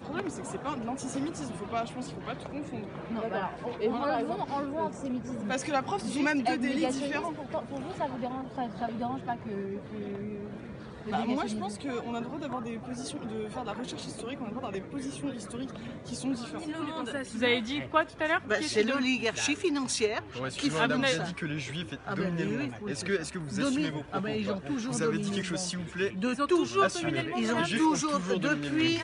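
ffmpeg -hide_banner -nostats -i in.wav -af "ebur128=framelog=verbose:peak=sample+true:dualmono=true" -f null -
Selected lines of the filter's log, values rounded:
Integrated loudness:
  I:         -28.6 LUFS
  Threshold: -38.6 LUFS
Loudness range:
  LRA:         7.9 LU
  Threshold: -48.8 LUFS
  LRA low:   -33.5 LUFS
  LRA high:  -25.6 LUFS
Sample peak:
  Peak:      -10.4 dBFS
True peak:
  Peak:      -10.3 dBFS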